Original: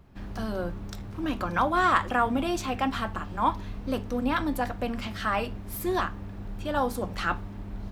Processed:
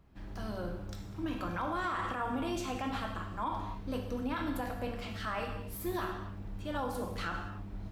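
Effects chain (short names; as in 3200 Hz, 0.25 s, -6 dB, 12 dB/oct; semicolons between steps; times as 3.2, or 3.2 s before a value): non-linear reverb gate 0.31 s falling, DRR 2 dB; limiter -17.5 dBFS, peak gain reduction 9.5 dB; gain -8.5 dB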